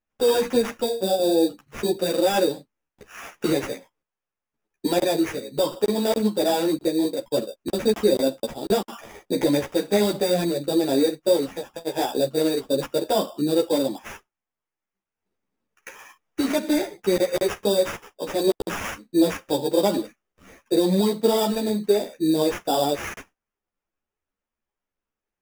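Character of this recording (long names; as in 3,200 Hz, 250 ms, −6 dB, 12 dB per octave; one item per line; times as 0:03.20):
aliases and images of a low sample rate 4,200 Hz, jitter 0%
a shimmering, thickened sound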